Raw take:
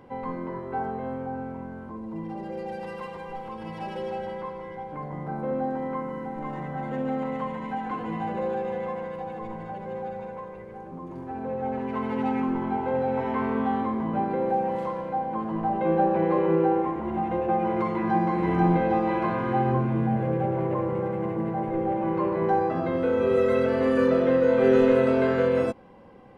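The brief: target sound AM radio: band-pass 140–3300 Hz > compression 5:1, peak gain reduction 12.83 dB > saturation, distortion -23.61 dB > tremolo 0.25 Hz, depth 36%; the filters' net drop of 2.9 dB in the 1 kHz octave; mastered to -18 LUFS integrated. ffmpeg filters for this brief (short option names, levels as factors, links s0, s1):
-af "highpass=140,lowpass=3300,equalizer=f=1000:t=o:g=-4,acompressor=threshold=0.0355:ratio=5,asoftclip=threshold=0.0708,tremolo=f=0.25:d=0.36,volume=7.94"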